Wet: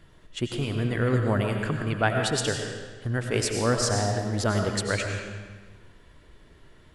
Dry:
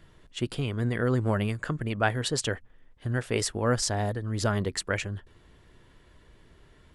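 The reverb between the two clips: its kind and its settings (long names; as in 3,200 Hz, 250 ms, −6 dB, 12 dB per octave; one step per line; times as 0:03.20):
comb and all-pass reverb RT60 1.4 s, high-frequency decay 0.9×, pre-delay 60 ms, DRR 3 dB
level +1 dB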